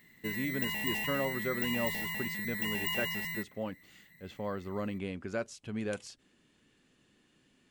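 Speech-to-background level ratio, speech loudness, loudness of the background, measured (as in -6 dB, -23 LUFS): -4.0 dB, -38.5 LUFS, -34.5 LUFS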